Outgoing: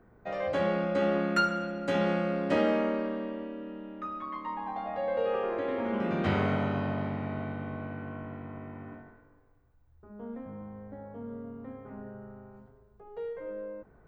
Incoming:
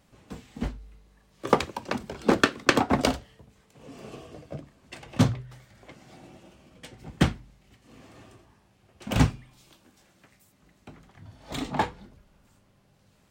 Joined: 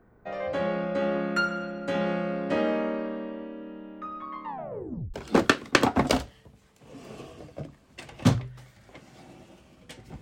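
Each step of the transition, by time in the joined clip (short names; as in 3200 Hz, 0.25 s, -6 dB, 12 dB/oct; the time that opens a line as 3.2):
outgoing
4.45 tape stop 0.69 s
5.14 switch to incoming from 2.08 s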